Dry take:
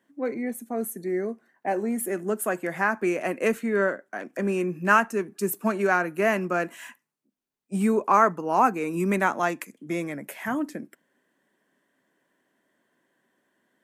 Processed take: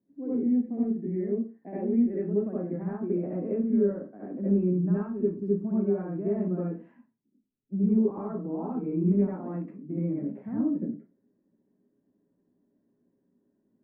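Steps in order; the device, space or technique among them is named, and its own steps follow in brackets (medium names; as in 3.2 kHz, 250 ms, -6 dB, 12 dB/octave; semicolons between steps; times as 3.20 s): television next door (compression 4:1, threshold -25 dBFS, peak gain reduction 10.5 dB; low-pass 250 Hz 12 dB/octave; reverberation RT60 0.30 s, pre-delay 63 ms, DRR -8.5 dB); 0.64–2.48 s: high-order bell 2.4 kHz +11 dB 1.1 oct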